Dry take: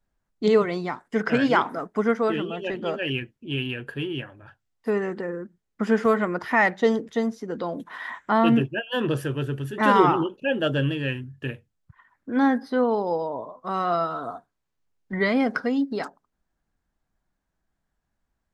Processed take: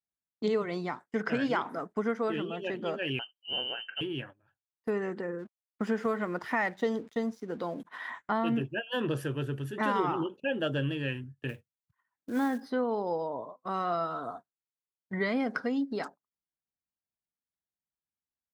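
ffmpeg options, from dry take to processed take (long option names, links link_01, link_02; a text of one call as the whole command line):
ffmpeg -i in.wav -filter_complex "[0:a]asettb=1/sr,asplit=3[link_01][link_02][link_03];[link_01]atrim=end=3.194[link_04];[link_02]atrim=start=3.19:end=4.01,asetpts=PTS-STARTPTS,afade=type=in:duration=0.004:curve=qsin,afade=type=out:start_time=0.816:duration=0.004:curve=qsin,lowpass=frequency=2700:width_type=q:width=0.5098,lowpass=frequency=2700:width_type=q:width=0.6013,lowpass=frequency=2700:width_type=q:width=0.9,lowpass=frequency=2700:width_type=q:width=2.563,afreqshift=-3200[link_05];[link_03]atrim=start=4.006[link_06];[link_04][link_05]acrossfade=duration=0.004:curve1=hsin:curve2=qsin[link_07];[link_07][link_06]acrossfade=duration=0.004:curve1=qsin:curve2=hsin,asplit=3[link_08][link_09][link_10];[link_08]afade=type=out:start_time=5.38:duration=0.02[link_11];[link_09]aeval=exprs='sgn(val(0))*max(abs(val(0))-0.00237,0)':channel_layout=same,afade=type=in:start_time=5.38:duration=0.02,afade=type=out:start_time=7.84:duration=0.02[link_12];[link_10]afade=type=in:start_time=7.84:duration=0.02[link_13];[link_11][link_12][link_13]amix=inputs=3:normalize=0,asettb=1/sr,asplit=3[link_14][link_15][link_16];[link_14]atrim=end=11.494[link_17];[link_15]atrim=start=11.49:end=12.71,asetpts=PTS-STARTPTS,afade=type=in:duration=0.004:curve=qsin,afade=type=out:start_time=1.216:duration=0.004:curve=qsin,acrusher=bits=6:mode=log:mix=0:aa=0.000001[link_18];[link_16]atrim=start=12.706[link_19];[link_17][link_18]acrossfade=duration=0.004:curve1=hsin:curve2=qsin[link_20];[link_20][link_19]acrossfade=duration=0.004:curve1=qsin:curve2=hsin,highpass=78,agate=range=-18dB:threshold=-40dB:ratio=16:detection=peak,acompressor=threshold=-21dB:ratio=3,volume=-5dB" out.wav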